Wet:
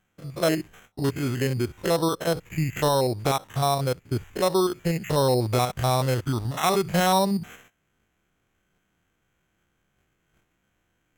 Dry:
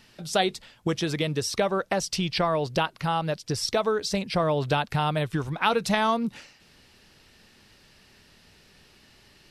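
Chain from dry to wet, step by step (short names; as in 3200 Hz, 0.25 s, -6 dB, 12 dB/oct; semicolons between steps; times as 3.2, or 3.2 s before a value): stepped spectrum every 50 ms; careless resampling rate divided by 8×, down filtered, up hold; varispeed -15%; gate -56 dBFS, range -16 dB; gain +3.5 dB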